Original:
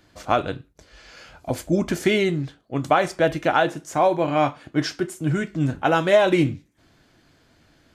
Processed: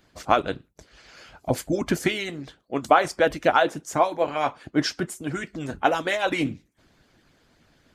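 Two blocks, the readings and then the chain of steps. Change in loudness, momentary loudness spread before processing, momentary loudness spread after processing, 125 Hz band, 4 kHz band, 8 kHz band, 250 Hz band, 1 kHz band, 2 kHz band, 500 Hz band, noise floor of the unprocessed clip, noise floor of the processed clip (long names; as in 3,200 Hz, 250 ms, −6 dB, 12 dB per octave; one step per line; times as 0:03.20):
−2.5 dB, 13 LU, 13 LU, −8.0 dB, −0.5 dB, +1.0 dB, −4.5 dB, −0.5 dB, −1.0 dB, −3.5 dB, −60 dBFS, −64 dBFS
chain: harmonic and percussive parts rebalanced harmonic −17 dB
level +2.5 dB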